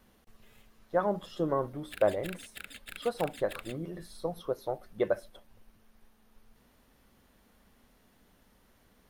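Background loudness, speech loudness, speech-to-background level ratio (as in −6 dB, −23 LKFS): −46.0 LKFS, −33.5 LKFS, 12.5 dB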